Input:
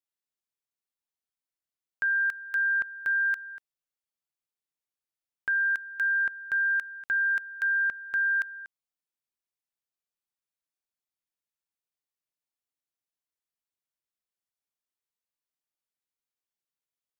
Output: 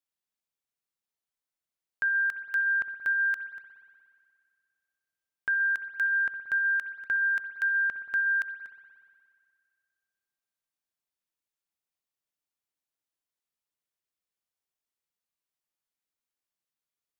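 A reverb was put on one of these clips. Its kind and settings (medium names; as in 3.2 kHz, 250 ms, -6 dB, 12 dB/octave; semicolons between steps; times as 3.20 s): spring tank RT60 2.1 s, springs 59 ms, chirp 35 ms, DRR 9 dB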